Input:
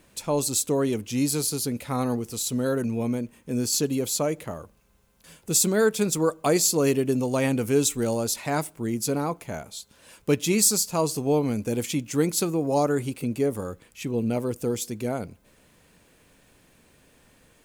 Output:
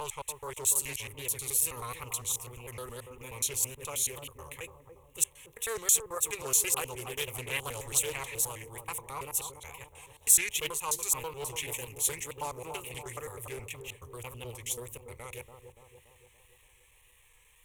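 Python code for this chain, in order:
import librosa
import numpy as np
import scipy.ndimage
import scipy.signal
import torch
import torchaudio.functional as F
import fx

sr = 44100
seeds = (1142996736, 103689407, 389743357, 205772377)

y = fx.block_reorder(x, sr, ms=107.0, group=4)
y = fx.wow_flutter(y, sr, seeds[0], rate_hz=2.1, depth_cents=120.0)
y = fx.tone_stack(y, sr, knobs='10-0-10')
y = fx.fixed_phaser(y, sr, hz=980.0, stages=8)
y = fx.echo_bbd(y, sr, ms=286, stages=2048, feedback_pct=55, wet_db=-7)
y = fx.doppler_dist(y, sr, depth_ms=0.54)
y = y * 10.0 ** (4.5 / 20.0)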